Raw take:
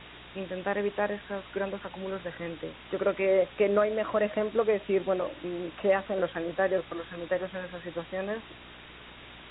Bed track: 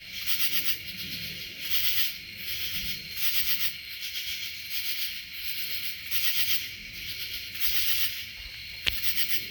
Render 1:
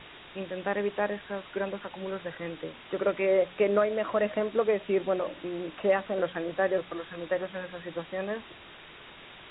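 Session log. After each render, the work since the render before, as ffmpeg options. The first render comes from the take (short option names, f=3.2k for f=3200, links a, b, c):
-af "bandreject=f=60:t=h:w=4,bandreject=f=120:t=h:w=4,bandreject=f=180:t=h:w=4,bandreject=f=240:t=h:w=4,bandreject=f=300:t=h:w=4"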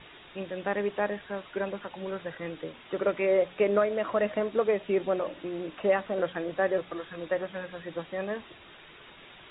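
-af "afftdn=nr=6:nf=-49"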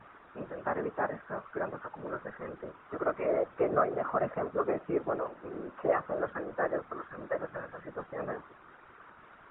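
-af "lowpass=f=1.3k:t=q:w=3.1,afftfilt=real='hypot(re,im)*cos(2*PI*random(0))':imag='hypot(re,im)*sin(2*PI*random(1))':win_size=512:overlap=0.75"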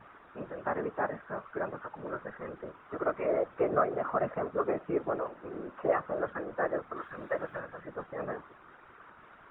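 -filter_complex "[0:a]asettb=1/sr,asplit=3[a][b][c];[a]atrim=end=6.964[d];[b]atrim=start=6.96:end=7.6,asetpts=PTS-STARTPTS,afade=t=in:d=0.004:c=qsin,afade=t=out:st=0.636:d=0.004:c=qsin,highshelf=f=2.9k:g=9.5[e];[c]atrim=start=7.596[f];[d][e]acrossfade=d=0.004:c1=hsin:c2=qsin[g];[g][f]acrossfade=d=0.004:c1=qsin:c2=hsin"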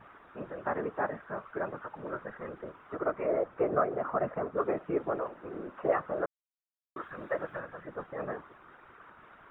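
-filter_complex "[0:a]asettb=1/sr,asplit=3[a][b][c];[a]atrim=end=2.964[d];[b]atrim=start=2.96:end=4.57,asetpts=PTS-STARTPTS,afade=t=in:d=0.004:c=qsin,afade=t=out:st=1.606:d=0.004:c=qsin,highshelf=f=2.9k:g=-7.5[e];[c]atrim=start=4.566[f];[d][e]acrossfade=d=0.004:c1=hsin:c2=qsin[g];[g][f]acrossfade=d=0.004:c1=qsin:c2=hsin,asplit=3[h][i][j];[h]atrim=end=6.26,asetpts=PTS-STARTPTS,afade=t=out:st=6.256:d=0.004:c=hsin[k];[i]atrim=start=6.26:end=6.96,asetpts=PTS-STARTPTS,volume=0[l];[j]atrim=start=6.96,asetpts=PTS-STARTPTS,afade=t=in:d=0.004:c=hsin[m];[k][l][m]concat=n=3:v=0:a=1"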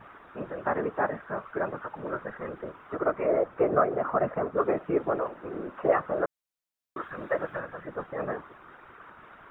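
-af "volume=4.5dB"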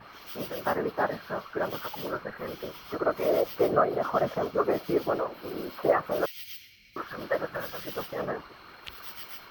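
-filter_complex "[1:a]volume=-16.5dB[a];[0:a][a]amix=inputs=2:normalize=0"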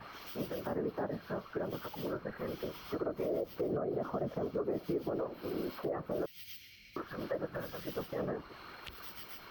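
-filter_complex "[0:a]acrossover=split=490[a][b];[b]acompressor=threshold=-46dB:ratio=3[c];[a][c]amix=inputs=2:normalize=0,alimiter=level_in=2dB:limit=-24dB:level=0:latency=1:release=97,volume=-2dB"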